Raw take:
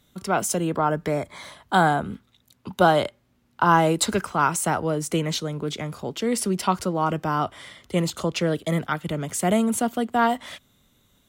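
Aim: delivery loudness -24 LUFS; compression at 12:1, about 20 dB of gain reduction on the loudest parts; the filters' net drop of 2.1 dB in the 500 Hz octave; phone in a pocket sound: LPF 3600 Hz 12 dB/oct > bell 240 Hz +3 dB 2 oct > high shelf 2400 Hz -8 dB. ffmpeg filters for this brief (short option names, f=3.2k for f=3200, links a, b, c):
-af "equalizer=f=500:t=o:g=-4,acompressor=threshold=-35dB:ratio=12,lowpass=3.6k,equalizer=f=240:t=o:w=2:g=3,highshelf=f=2.4k:g=-8,volume=15.5dB"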